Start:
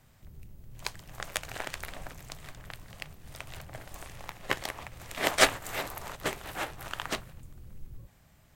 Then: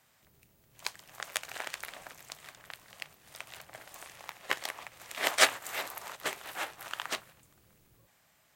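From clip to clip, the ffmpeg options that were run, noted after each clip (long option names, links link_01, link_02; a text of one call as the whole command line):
ffmpeg -i in.wav -af "highpass=frequency=800:poles=1" out.wav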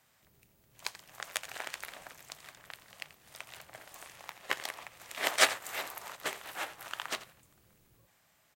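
ffmpeg -i in.wav -af "aecho=1:1:85:0.158,volume=-1.5dB" out.wav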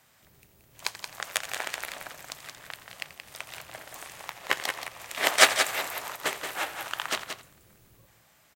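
ffmpeg -i in.wav -af "aecho=1:1:177:0.422,volume=6.5dB" out.wav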